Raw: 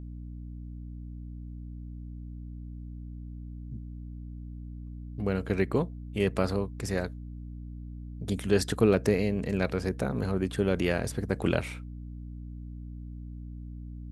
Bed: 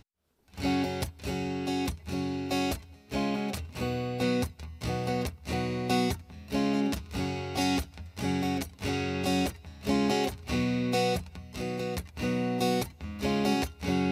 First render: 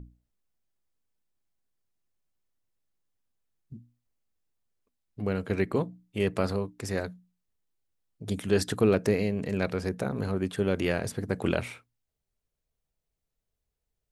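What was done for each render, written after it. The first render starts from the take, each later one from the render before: hum notches 60/120/180/240/300 Hz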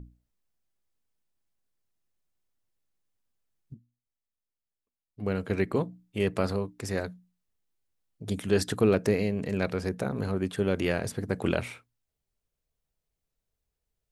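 3.74–5.30 s: upward expansion, over -50 dBFS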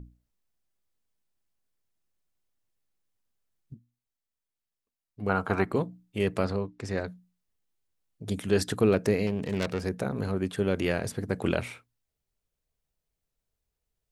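5.29–5.71 s: high-order bell 1 kHz +15.5 dB 1.3 oct; 6.44–7.08 s: distance through air 78 m; 9.27–9.81 s: self-modulated delay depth 0.37 ms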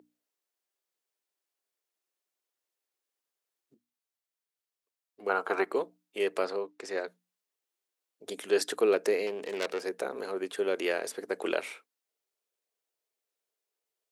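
Chebyshev high-pass 380 Hz, order 3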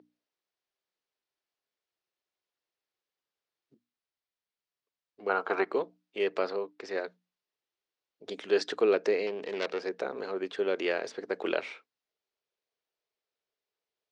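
low-pass 5.3 kHz 24 dB/octave; peaking EQ 140 Hz +3.5 dB 0.9 oct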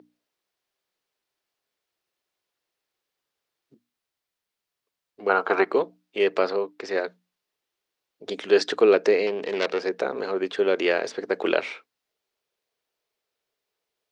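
trim +7.5 dB

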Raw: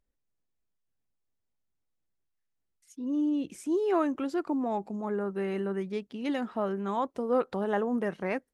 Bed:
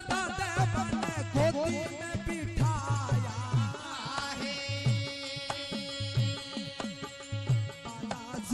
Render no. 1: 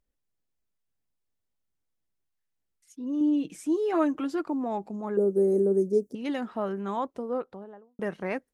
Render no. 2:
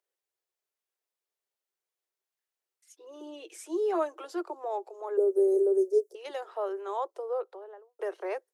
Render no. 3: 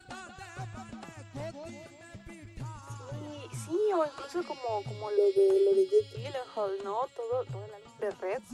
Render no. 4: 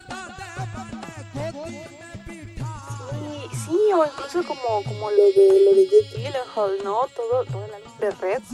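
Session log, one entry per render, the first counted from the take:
3.20–4.46 s: comb 6.5 ms; 5.17–6.15 s: FFT filter 130 Hz 0 dB, 470 Hz +12 dB, 980 Hz -13 dB, 1.4 kHz -17 dB, 3 kHz -30 dB, 5.9 kHz +7 dB, 8.8 kHz +11 dB; 6.89–7.99 s: studio fade out
steep high-pass 350 Hz 96 dB/octave; dynamic bell 2.1 kHz, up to -8 dB, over -50 dBFS, Q 1.1
add bed -13 dB
trim +10 dB

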